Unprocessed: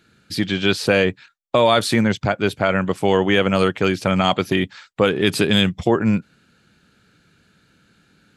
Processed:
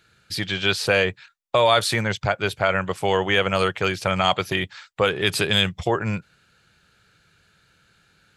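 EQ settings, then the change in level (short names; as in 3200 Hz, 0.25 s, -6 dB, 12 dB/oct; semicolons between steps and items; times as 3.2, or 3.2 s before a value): bell 250 Hz -14 dB 1.1 oct; 0.0 dB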